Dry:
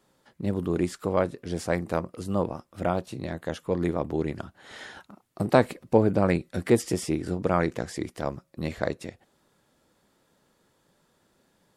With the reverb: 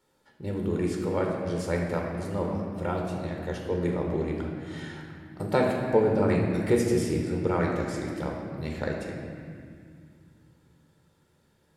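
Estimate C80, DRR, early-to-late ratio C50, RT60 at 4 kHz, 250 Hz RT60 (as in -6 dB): 3.5 dB, -0.5 dB, 2.0 dB, 1.7 s, 3.7 s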